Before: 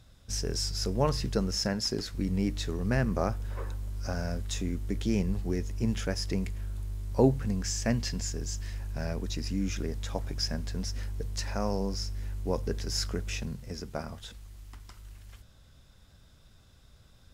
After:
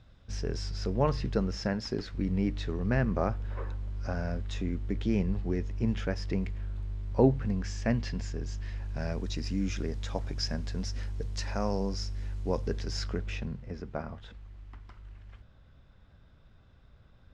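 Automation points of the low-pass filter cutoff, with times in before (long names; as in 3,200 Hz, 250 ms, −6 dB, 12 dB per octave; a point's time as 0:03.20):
0:08.64 3,200 Hz
0:09.16 5,800 Hz
0:12.61 5,800 Hz
0:13.63 2,300 Hz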